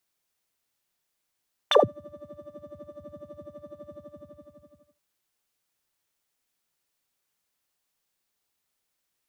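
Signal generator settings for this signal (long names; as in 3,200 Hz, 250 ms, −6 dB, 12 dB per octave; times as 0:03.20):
subtractive patch with filter wobble D5, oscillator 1 triangle, oscillator 2 square, interval +12 semitones, oscillator 2 level −10.5 dB, sub −28 dB, noise −13 dB, filter bandpass, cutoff 140 Hz, Q 11, filter envelope 4 octaves, filter decay 0.16 s, filter sustain 5%, attack 4.4 ms, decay 0.18 s, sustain −16 dB, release 1.09 s, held 2.19 s, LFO 12 Hz, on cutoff 1.1 octaves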